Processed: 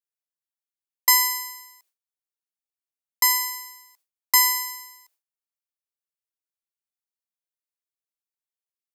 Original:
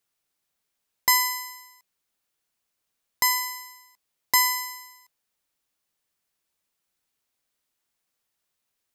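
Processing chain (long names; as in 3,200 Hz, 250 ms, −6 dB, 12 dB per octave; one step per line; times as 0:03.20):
elliptic high-pass filter 310 Hz
noise gate with hold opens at −50 dBFS
high-shelf EQ 4,900 Hz +7 dB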